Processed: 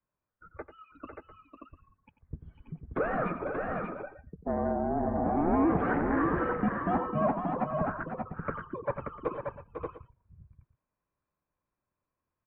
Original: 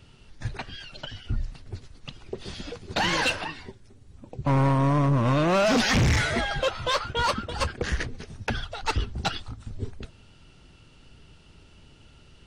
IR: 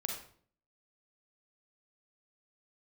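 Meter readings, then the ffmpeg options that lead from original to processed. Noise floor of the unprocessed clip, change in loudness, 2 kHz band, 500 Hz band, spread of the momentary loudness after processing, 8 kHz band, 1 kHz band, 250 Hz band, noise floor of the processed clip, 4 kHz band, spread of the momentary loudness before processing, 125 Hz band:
−54 dBFS, −5.5 dB, −10.0 dB, −2.5 dB, 20 LU, below −40 dB, −3.0 dB, −2.0 dB, below −85 dBFS, below −35 dB, 18 LU, −12.0 dB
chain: -af "afftdn=noise_reduction=26:noise_floor=-35,adynamicequalizer=threshold=0.0141:dfrequency=700:dqfactor=0.75:tfrequency=700:tqfactor=0.75:attack=5:release=100:ratio=0.375:range=3:mode=boostabove:tftype=bell,acompressor=threshold=-37dB:ratio=1.5,highpass=frequency=370:width_type=q:width=0.5412,highpass=frequency=370:width_type=q:width=1.307,lowpass=frequency=2000:width_type=q:width=0.5176,lowpass=frequency=2000:width_type=q:width=0.7071,lowpass=frequency=2000:width_type=q:width=1.932,afreqshift=-320,aecho=1:1:92|500|581|698:0.251|0.398|0.562|0.133"

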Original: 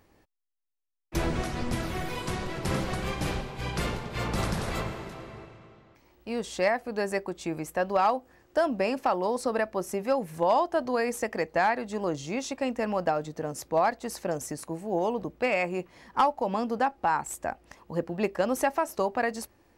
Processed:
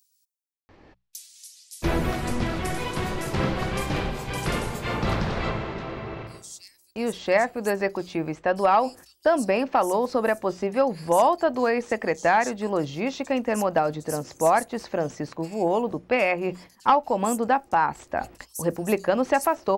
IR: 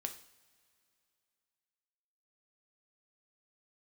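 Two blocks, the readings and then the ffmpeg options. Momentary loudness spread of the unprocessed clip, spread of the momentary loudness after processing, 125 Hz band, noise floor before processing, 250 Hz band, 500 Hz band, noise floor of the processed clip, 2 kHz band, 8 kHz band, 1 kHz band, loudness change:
9 LU, 11 LU, +4.0 dB, −63 dBFS, +4.5 dB, +4.5 dB, −64 dBFS, +4.0 dB, +3.5 dB, +4.5 dB, +4.5 dB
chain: -filter_complex "[0:a]agate=range=-26dB:threshold=-48dB:ratio=16:detection=peak,bandreject=frequency=60:width_type=h:width=6,bandreject=frequency=120:width_type=h:width=6,bandreject=frequency=180:width_type=h:width=6,areverse,acompressor=mode=upward:threshold=-31dB:ratio=2.5,areverse,acrossover=split=5200[link_01][link_02];[link_01]adelay=690[link_03];[link_03][link_02]amix=inputs=2:normalize=0,volume=4.5dB"

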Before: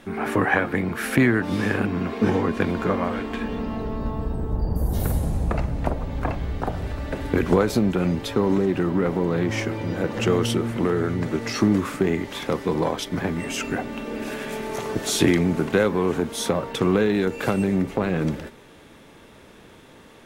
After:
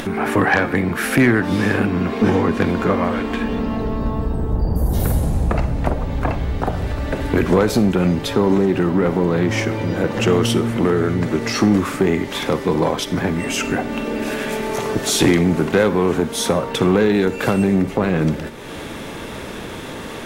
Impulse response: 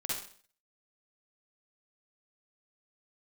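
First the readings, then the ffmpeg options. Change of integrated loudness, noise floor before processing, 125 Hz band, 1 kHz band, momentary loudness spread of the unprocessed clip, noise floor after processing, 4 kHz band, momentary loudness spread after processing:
+5.0 dB, −48 dBFS, +5.0 dB, +5.5 dB, 9 LU, −31 dBFS, +6.0 dB, 8 LU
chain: -filter_complex "[0:a]acompressor=mode=upward:threshold=-24dB:ratio=2.5,aeval=exprs='0.708*(cos(1*acos(clip(val(0)/0.708,-1,1)))-cos(1*PI/2))+0.112*(cos(5*acos(clip(val(0)/0.708,-1,1)))-cos(5*PI/2))':channel_layout=same,asplit=2[link_01][link_02];[1:a]atrim=start_sample=2205[link_03];[link_02][link_03]afir=irnorm=-1:irlink=0,volume=-17.5dB[link_04];[link_01][link_04]amix=inputs=2:normalize=0"

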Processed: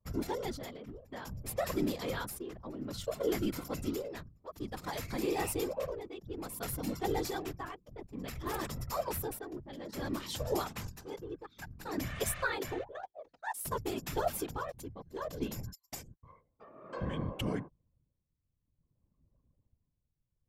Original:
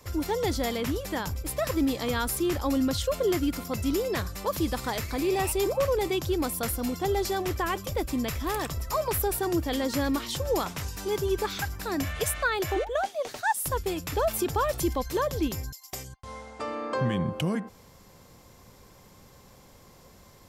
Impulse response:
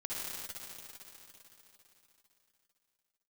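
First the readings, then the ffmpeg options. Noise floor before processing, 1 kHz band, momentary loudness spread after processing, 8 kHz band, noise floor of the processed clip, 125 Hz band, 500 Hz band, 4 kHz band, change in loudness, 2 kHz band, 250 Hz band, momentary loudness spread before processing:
−54 dBFS, −9.5 dB, 13 LU, −9.0 dB, −82 dBFS, −9.0 dB, −9.5 dB, −10.0 dB, −9.5 dB, −9.0 dB, −9.5 dB, 6 LU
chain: -af "tremolo=f=0.57:d=0.74,anlmdn=0.251,afftfilt=real='hypot(re,im)*cos(2*PI*random(0))':imag='hypot(re,im)*sin(2*PI*random(1))':win_size=512:overlap=0.75"

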